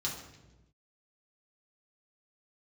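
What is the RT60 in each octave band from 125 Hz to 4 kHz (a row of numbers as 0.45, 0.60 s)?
1.5, 1.3, 1.2, 0.90, 0.90, 0.85 s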